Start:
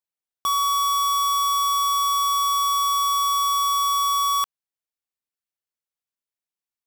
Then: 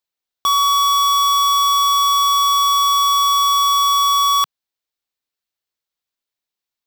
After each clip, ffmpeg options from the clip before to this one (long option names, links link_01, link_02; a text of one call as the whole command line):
ffmpeg -i in.wav -af "equalizer=frequency=160:width_type=o:width=0.67:gain=-5,equalizer=frequency=4000:width_type=o:width=0.67:gain=5,equalizer=frequency=10000:width_type=o:width=0.67:gain=-5,volume=6dB" out.wav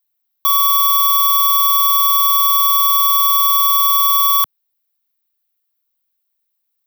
ffmpeg -i in.wav -filter_complex "[0:a]acrossover=split=240|1800|3400[link_01][link_02][link_03][link_04];[link_03]alimiter=level_in=4.5dB:limit=-24dB:level=0:latency=1,volume=-4.5dB[link_05];[link_01][link_02][link_05][link_04]amix=inputs=4:normalize=0,aexciter=amount=7.5:drive=3:freq=11000,asoftclip=type=tanh:threshold=-5dB" out.wav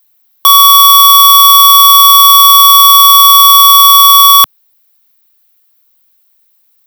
ffmpeg -i in.wav -af "apsyclip=20dB,volume=-1.5dB" out.wav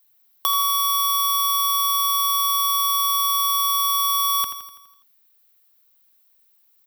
ffmpeg -i in.wav -filter_complex "[0:a]acompressor=threshold=-18dB:ratio=2.5,asplit=2[link_01][link_02];[link_02]aecho=0:1:83|166|249|332|415|498|581:0.335|0.188|0.105|0.0588|0.0329|0.0184|0.0103[link_03];[link_01][link_03]amix=inputs=2:normalize=0,volume=-8dB" out.wav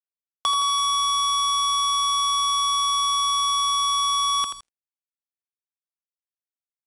ffmpeg -i in.wav -af "acrusher=bits=4:mix=0:aa=0.5,aresample=22050,aresample=44100" out.wav